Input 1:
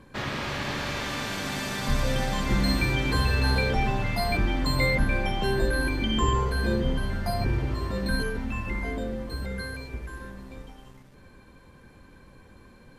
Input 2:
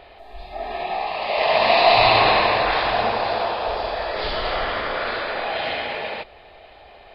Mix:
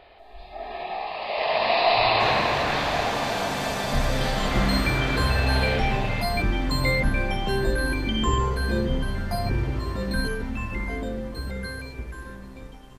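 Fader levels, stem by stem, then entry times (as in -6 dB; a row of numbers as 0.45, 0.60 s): +1.0, -5.5 dB; 2.05, 0.00 s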